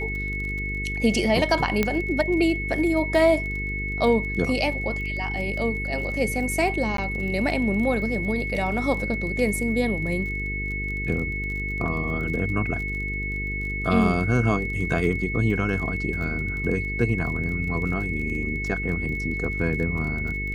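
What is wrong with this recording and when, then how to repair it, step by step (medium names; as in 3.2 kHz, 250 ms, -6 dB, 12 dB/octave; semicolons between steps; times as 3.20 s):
buzz 50 Hz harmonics 9 -31 dBFS
crackle 26 per s -32 dBFS
whine 2.2 kHz -29 dBFS
1.83 s: pop -8 dBFS
6.97–6.98 s: dropout 13 ms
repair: de-click; de-hum 50 Hz, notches 9; band-stop 2.2 kHz, Q 30; interpolate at 6.97 s, 13 ms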